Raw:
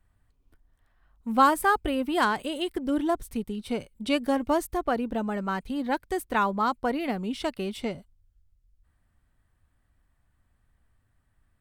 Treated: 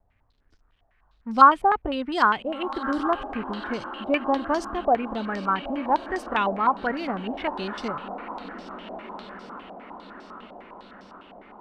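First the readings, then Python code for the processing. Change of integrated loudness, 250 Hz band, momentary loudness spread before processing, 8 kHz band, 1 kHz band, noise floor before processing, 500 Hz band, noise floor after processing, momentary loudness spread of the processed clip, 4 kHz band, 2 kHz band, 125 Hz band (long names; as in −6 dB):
+3.0 dB, −0.5 dB, 10 LU, can't be measured, +5.5 dB, −71 dBFS, +1.5 dB, −65 dBFS, 19 LU, 0.0 dB, +2.5 dB, −1.0 dB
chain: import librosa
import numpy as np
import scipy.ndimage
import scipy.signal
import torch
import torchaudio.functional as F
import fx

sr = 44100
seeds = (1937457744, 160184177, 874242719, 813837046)

y = fx.echo_diffused(x, sr, ms=1484, feedback_pct=53, wet_db=-11.5)
y = fx.quant_dither(y, sr, seeds[0], bits=12, dither='none')
y = fx.filter_held_lowpass(y, sr, hz=9.9, low_hz=720.0, high_hz=5300.0)
y = y * 10.0 ** (-1.5 / 20.0)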